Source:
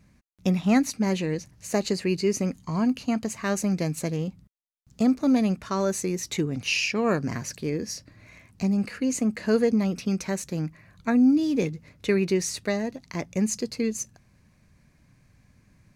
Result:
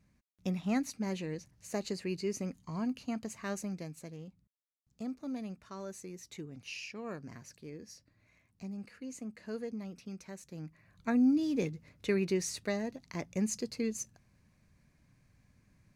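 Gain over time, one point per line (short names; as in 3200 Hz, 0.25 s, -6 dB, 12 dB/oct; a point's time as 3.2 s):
3.51 s -11 dB
3.99 s -18 dB
10.4 s -18 dB
11.09 s -7.5 dB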